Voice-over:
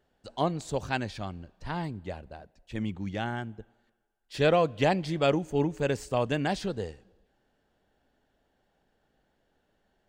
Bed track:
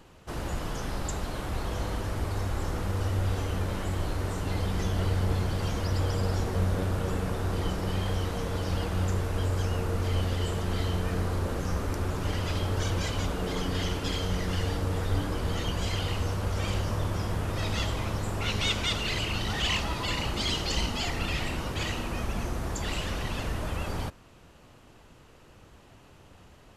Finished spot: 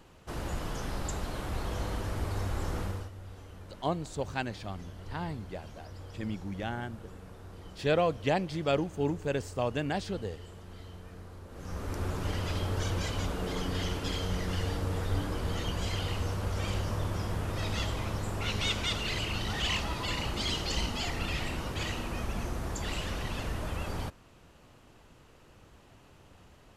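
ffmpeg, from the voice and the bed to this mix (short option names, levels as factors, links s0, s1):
-filter_complex "[0:a]adelay=3450,volume=0.668[s0];[1:a]volume=4.22,afade=t=out:st=2.81:d=0.29:silence=0.16788,afade=t=in:st=11.5:d=0.55:silence=0.177828[s1];[s0][s1]amix=inputs=2:normalize=0"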